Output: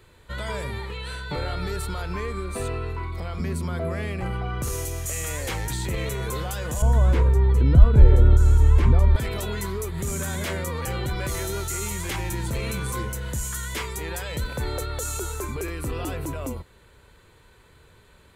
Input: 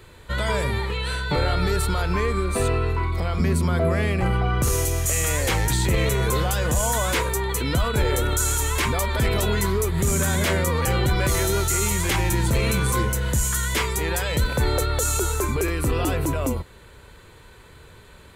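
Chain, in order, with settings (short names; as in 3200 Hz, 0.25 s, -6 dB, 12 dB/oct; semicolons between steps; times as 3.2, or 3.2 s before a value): 6.82–9.16 tilt -4.5 dB/oct; gain -7 dB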